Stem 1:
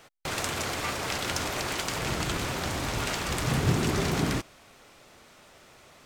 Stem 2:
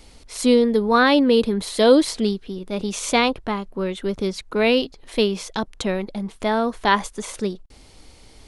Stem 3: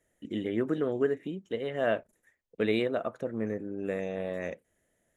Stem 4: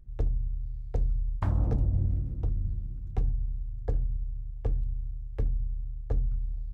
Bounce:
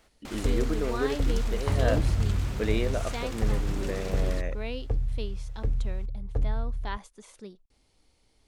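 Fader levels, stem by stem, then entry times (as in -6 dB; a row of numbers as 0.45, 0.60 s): -11.0, -19.0, -1.5, +1.0 dB; 0.00, 0.00, 0.00, 0.25 s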